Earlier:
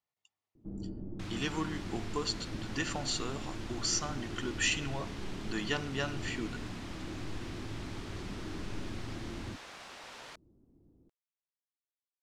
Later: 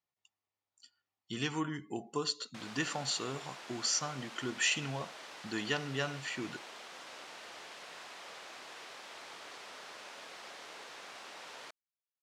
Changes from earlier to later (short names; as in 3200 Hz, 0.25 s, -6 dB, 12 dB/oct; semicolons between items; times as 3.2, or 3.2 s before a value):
first sound: muted; second sound: entry +1.35 s